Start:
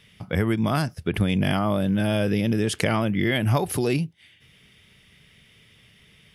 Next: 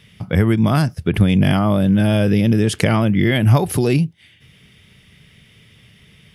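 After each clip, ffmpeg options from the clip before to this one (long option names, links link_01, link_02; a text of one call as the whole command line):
ffmpeg -i in.wav -af "equalizer=frequency=120:width=0.54:gain=5.5,volume=4dB" out.wav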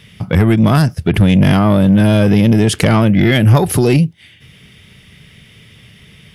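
ffmpeg -i in.wav -af "asoftclip=type=tanh:threshold=-9.5dB,volume=6.5dB" out.wav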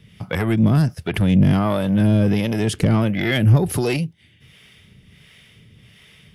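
ffmpeg -i in.wav -filter_complex "[0:a]acrossover=split=450[link_01][link_02];[link_01]aeval=exprs='val(0)*(1-0.7/2+0.7/2*cos(2*PI*1.4*n/s))':channel_layout=same[link_03];[link_02]aeval=exprs='val(0)*(1-0.7/2-0.7/2*cos(2*PI*1.4*n/s))':channel_layout=same[link_04];[link_03][link_04]amix=inputs=2:normalize=0,volume=-3.5dB" out.wav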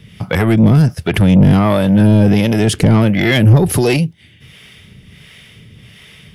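ffmpeg -i in.wav -af "asoftclip=type=tanh:threshold=-11.5dB,volume=8.5dB" out.wav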